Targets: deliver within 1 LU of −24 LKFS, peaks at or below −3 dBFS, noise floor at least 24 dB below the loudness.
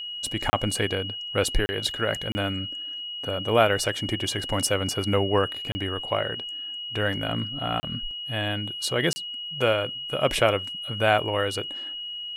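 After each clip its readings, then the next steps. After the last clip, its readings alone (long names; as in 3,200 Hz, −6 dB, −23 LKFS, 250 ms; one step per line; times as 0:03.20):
number of dropouts 6; longest dropout 30 ms; interfering tone 2,900 Hz; level of the tone −32 dBFS; integrated loudness −26.0 LKFS; sample peak −4.5 dBFS; target loudness −24.0 LKFS
→ repair the gap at 0:00.50/0:01.66/0:02.32/0:05.72/0:07.80/0:09.13, 30 ms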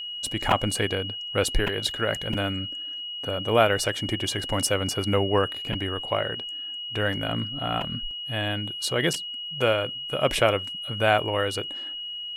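number of dropouts 0; interfering tone 2,900 Hz; level of the tone −32 dBFS
→ notch filter 2,900 Hz, Q 30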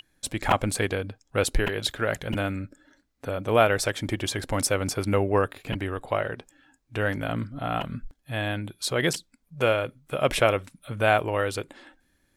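interfering tone none found; integrated loudness −27.0 LKFS; sample peak −5.0 dBFS; target loudness −24.0 LKFS
→ level +3 dB
brickwall limiter −3 dBFS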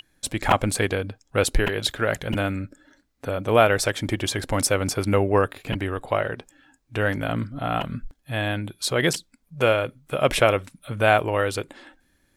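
integrated loudness −24.0 LKFS; sample peak −3.0 dBFS; background noise floor −67 dBFS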